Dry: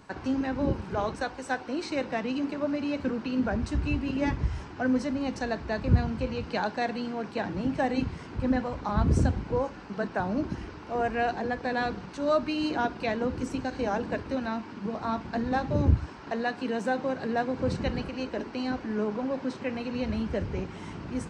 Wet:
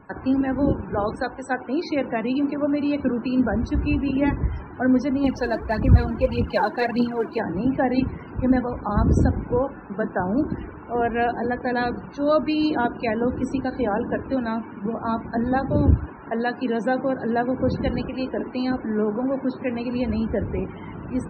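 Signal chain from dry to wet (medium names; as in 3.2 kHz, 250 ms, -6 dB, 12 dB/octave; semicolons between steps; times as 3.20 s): dynamic bell 320 Hz, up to +4 dB, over -38 dBFS, Q 1.1; loudest bins only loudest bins 64; 5.24–7.40 s: phaser 1.7 Hz, delay 3.3 ms, feedback 63%; trim +4 dB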